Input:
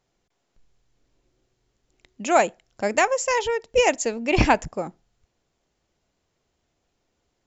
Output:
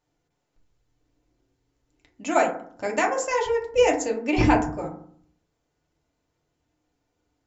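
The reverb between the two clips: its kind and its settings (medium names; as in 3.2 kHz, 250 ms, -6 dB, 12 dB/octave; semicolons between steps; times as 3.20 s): FDN reverb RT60 0.56 s, low-frequency decay 1.4×, high-frequency decay 0.35×, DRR -1.5 dB; trim -6.5 dB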